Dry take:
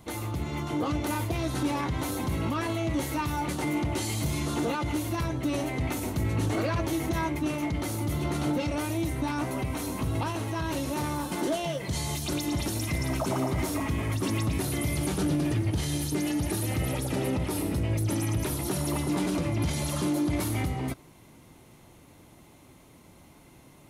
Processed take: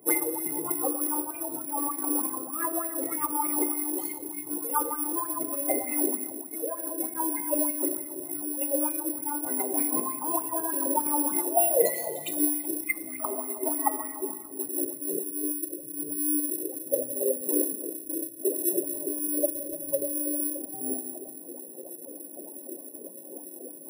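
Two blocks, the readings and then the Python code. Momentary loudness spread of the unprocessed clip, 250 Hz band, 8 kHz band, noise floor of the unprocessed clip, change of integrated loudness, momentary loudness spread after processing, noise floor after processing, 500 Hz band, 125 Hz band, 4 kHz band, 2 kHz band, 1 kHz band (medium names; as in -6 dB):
3 LU, -3.5 dB, +9.0 dB, -54 dBFS, +2.0 dB, 13 LU, -44 dBFS, +2.0 dB, -28.5 dB, -16.5 dB, -4.5 dB, +0.5 dB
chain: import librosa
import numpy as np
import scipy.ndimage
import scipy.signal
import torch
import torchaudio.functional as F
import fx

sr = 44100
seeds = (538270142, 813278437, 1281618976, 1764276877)

y = fx.spec_expand(x, sr, power=2.6)
y = fx.over_compress(y, sr, threshold_db=-34.0, ratio=-0.5)
y = fx.filter_sweep_lowpass(y, sr, from_hz=9800.0, to_hz=530.0, start_s=12.47, end_s=14.61, q=4.0)
y = scipy.signal.sosfilt(scipy.signal.butter(4, 290.0, 'highpass', fs=sr, output='sos'), y)
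y = fx.rev_plate(y, sr, seeds[0], rt60_s=2.0, hf_ratio=0.5, predelay_ms=0, drr_db=2.0)
y = (np.kron(scipy.signal.resample_poly(y, 1, 4), np.eye(4)[0]) * 4)[:len(y)]
y = fx.bell_lfo(y, sr, hz=3.3, low_hz=410.0, high_hz=2500.0, db=15)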